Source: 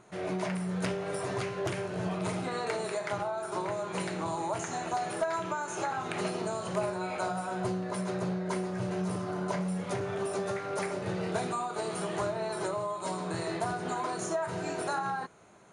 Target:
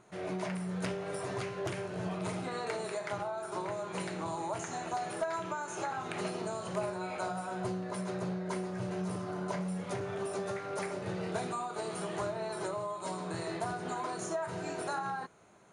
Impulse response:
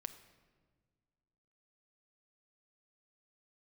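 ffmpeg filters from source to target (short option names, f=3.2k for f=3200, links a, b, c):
-af "volume=-3.5dB"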